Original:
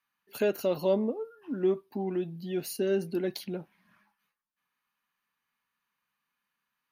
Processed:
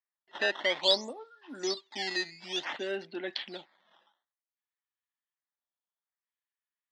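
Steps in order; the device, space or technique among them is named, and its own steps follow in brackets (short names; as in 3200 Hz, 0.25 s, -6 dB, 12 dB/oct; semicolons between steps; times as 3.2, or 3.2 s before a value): circuit-bent sampling toy (decimation with a swept rate 11×, swing 160% 0.56 Hz; speaker cabinet 420–4700 Hz, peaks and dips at 450 Hz -9 dB, 870 Hz +4 dB, 1900 Hz +9 dB, 3400 Hz +10 dB); 0.83–2.65 band shelf 6400 Hz +13 dB; gate with hold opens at -58 dBFS; low shelf 160 Hz -6 dB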